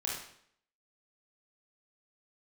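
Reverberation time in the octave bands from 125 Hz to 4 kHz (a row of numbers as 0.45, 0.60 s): 0.65, 0.65, 0.65, 0.65, 0.60, 0.60 s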